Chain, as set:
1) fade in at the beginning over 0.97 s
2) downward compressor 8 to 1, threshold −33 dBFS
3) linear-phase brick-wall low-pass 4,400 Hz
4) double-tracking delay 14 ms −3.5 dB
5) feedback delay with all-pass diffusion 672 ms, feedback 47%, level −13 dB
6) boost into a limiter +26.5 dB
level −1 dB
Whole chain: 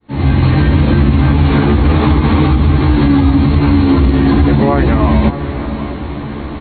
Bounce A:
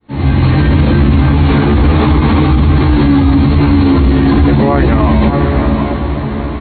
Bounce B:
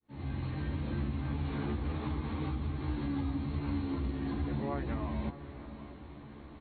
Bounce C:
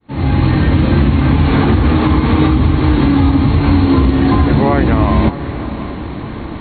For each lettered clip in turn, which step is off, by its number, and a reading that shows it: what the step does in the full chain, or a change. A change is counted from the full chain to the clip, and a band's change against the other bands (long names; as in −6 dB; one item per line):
2, average gain reduction 6.5 dB
6, change in crest factor +3.0 dB
4, change in momentary loudness spread +1 LU